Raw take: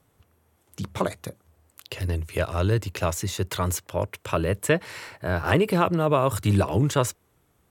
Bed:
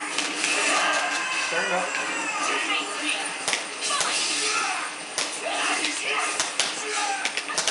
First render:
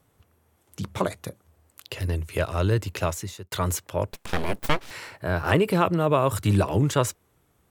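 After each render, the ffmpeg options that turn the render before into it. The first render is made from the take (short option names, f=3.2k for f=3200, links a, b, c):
-filter_complex "[0:a]asettb=1/sr,asplit=3[a][b][c];[a]atrim=end=4.114[d];[b]atrim=start=4.11:end=4.91,asetpts=PTS-STARTPTS,afade=t=in:d=0.004:c=qsin,afade=t=out:st=0.796:d=0.004:c=qsin,aeval=exprs='abs(val(0))':c=same[e];[c]atrim=start=4.906[f];[d][e]acrossfade=d=0.004:c1=hsin:c2=qsin[g];[g][f]acrossfade=d=0.004:c1=qsin:c2=hsin,asplit=2[h][i];[h]atrim=end=3.52,asetpts=PTS-STARTPTS,afade=t=out:st=3.02:d=0.5[j];[i]atrim=start=3.52,asetpts=PTS-STARTPTS,afade=t=in:d=0.004:c=hsin[k];[j][k]concat=n=2:v=0:a=1"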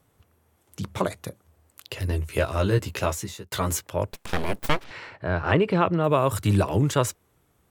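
-filter_complex "[0:a]asettb=1/sr,asplit=3[a][b][c];[a]atrim=end=2.094[d];[b]atrim=start=2.09:end=3.83,asetpts=PTS-STARTPTS,afade=t=in:d=0.004:c=qsin,afade=t=out:st=1.736:d=0.004:c=qsin,asplit=2[e][f];[f]adelay=15,volume=-4dB[g];[e][g]amix=inputs=2:normalize=0,atrim=end_sample=76734[h];[c]atrim=start=3.826[i];[d][h]acrossfade=d=0.004:c1=hsin:c2=qsin[j];[j][i]acrossfade=d=0.004:c1=qsin:c2=hsin,asplit=3[k][l][m];[k]afade=t=out:st=4.83:d=0.02[n];[l]lowpass=3.6k,afade=t=in:st=4.83:d=0.02,afade=t=out:st=6.03:d=0.02[o];[m]afade=t=in:st=6.03:d=0.02[p];[n][o][p]amix=inputs=3:normalize=0"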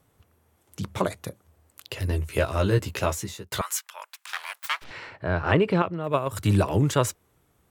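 -filter_complex "[0:a]asettb=1/sr,asplit=3[a][b][c];[a]atrim=end=3.614[d];[b]atrim=start=3.61:end=4.82,asetpts=PTS-STARTPTS,afade=t=in:d=0.004:c=qsin,afade=t=out:st=1.206:d=0.004:c=qsin,highpass=f=1.1k:w=0.5412,highpass=f=1.1k:w=1.3066[e];[c]atrim=start=4.816[f];[d][e]acrossfade=d=0.004:c1=hsin:c2=qsin[g];[g][f]acrossfade=d=0.004:c1=qsin:c2=hsin,asettb=1/sr,asplit=3[h][i][j];[h]atrim=end=5.824[k];[i]atrim=start=5.82:end=6.37,asetpts=PTS-STARTPTS,afade=t=in:d=0.004:c=qsin,afade=t=out:st=0.546:d=0.004:c=qsin,agate=range=-8dB:threshold=-20dB:ratio=16:release=100:detection=peak[l];[j]atrim=start=6.366[m];[k][l]acrossfade=d=0.004:c1=hsin:c2=qsin[n];[n][m]acrossfade=d=0.004:c1=qsin:c2=hsin"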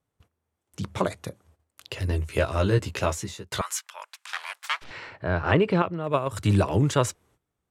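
-af "agate=range=-16dB:threshold=-58dB:ratio=16:detection=peak,lowpass=9.6k"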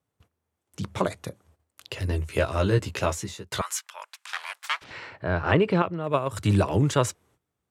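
-af "highpass=60"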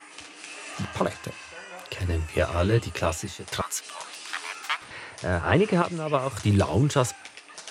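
-filter_complex "[1:a]volume=-17dB[a];[0:a][a]amix=inputs=2:normalize=0"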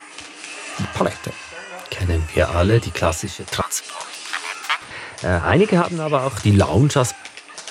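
-af "volume=7dB,alimiter=limit=-3dB:level=0:latency=1"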